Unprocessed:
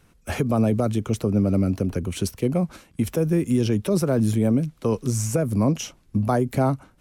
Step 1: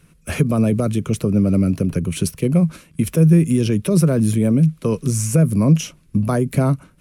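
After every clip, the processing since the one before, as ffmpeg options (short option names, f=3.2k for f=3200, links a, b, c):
-af "equalizer=f=160:t=o:w=0.33:g=11,equalizer=f=800:t=o:w=0.33:g=-10,equalizer=f=2.5k:t=o:w=0.33:g=4,equalizer=f=10k:t=o:w=0.33:g=8,volume=2.5dB"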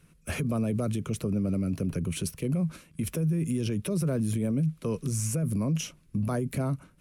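-af "alimiter=limit=-14dB:level=0:latency=1:release=30,volume=-7dB"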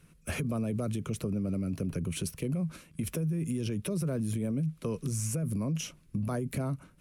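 -af "acompressor=threshold=-31dB:ratio=2"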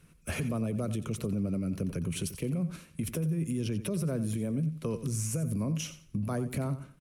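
-af "aecho=1:1:89|178|267:0.224|0.056|0.014"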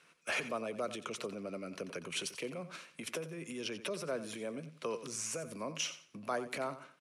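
-af "highpass=620,lowpass=5.8k,volume=4.5dB"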